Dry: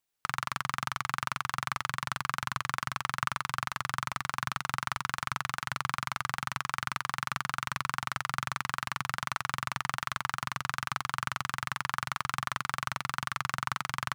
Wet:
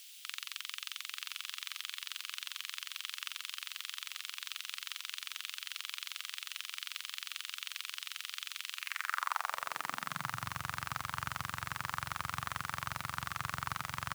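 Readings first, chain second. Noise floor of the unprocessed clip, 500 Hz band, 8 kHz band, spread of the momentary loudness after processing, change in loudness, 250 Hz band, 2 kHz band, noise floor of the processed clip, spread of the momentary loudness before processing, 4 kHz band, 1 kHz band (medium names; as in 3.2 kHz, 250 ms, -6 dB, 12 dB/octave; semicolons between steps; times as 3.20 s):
-70 dBFS, -8.5 dB, -3.0 dB, 3 LU, -6.0 dB, -9.0 dB, -7.5 dB, -53 dBFS, 1 LU, -0.5 dB, -9.0 dB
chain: word length cut 8-bit, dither triangular; delay 922 ms -12 dB; high-pass sweep 3.1 kHz -> 70 Hz, 8.74–10.58 s; trim -6 dB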